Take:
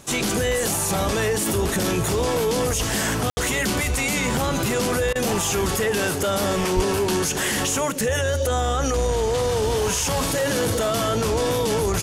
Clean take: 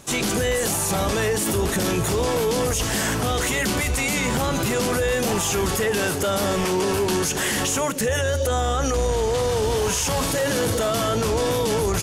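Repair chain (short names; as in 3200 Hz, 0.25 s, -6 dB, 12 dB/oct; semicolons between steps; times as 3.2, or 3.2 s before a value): de-plosive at 6.75; room tone fill 3.3–3.37; interpolate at 5.13, 23 ms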